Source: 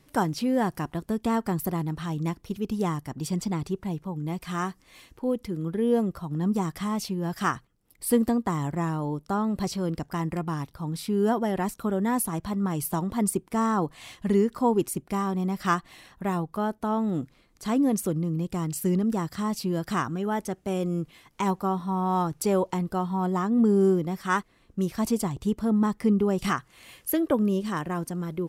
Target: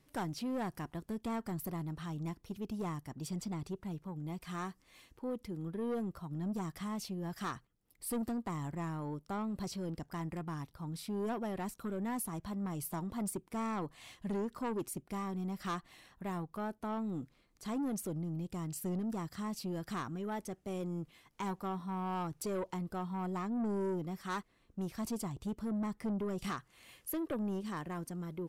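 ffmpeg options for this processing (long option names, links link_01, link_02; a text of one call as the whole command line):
ffmpeg -i in.wav -af "asoftclip=type=tanh:threshold=-22.5dB,volume=-9dB" out.wav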